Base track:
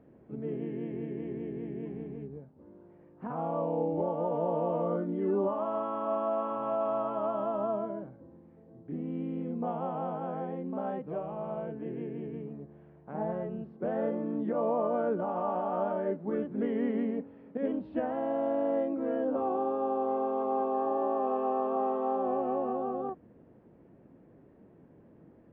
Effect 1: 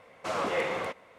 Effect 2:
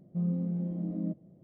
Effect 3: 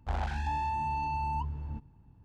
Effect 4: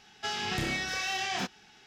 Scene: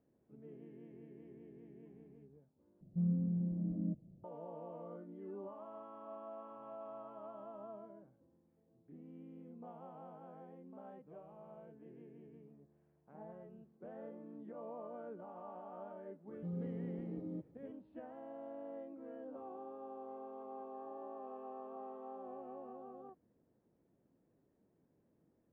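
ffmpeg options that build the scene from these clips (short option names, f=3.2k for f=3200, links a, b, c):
-filter_complex "[2:a]asplit=2[a][b];[0:a]volume=-18.5dB[c];[a]aemphasis=mode=reproduction:type=riaa[d];[b]aecho=1:1:2.3:0.91[e];[c]asplit=2[f][g];[f]atrim=end=2.814[h];[d]atrim=end=1.43,asetpts=PTS-STARTPTS,volume=-12.5dB[i];[g]atrim=start=4.236[j];[e]atrim=end=1.43,asetpts=PTS-STARTPTS,volume=-7dB,afade=t=in:d=0.004:c=hsin,afade=t=out:st=1.426:d=0.004:c=hsin,adelay=16280[k];[h][i]acrossfade=d=0.004:c1=hsin:c2=hsin[l];[l][j]acrossfade=d=0.004:c1=hsin:c2=hsin[m];[m][k]amix=inputs=2:normalize=0"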